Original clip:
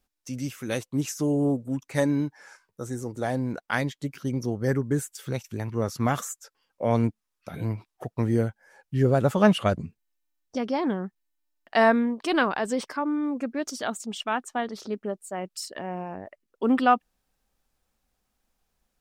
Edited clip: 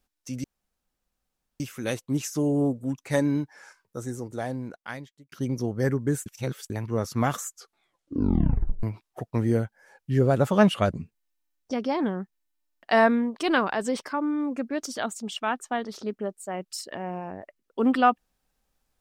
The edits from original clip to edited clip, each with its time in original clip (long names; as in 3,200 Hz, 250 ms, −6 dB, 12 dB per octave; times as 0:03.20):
0:00.44: splice in room tone 1.16 s
0:02.84–0:04.16: fade out
0:05.10–0:05.54: reverse
0:06.32: tape stop 1.35 s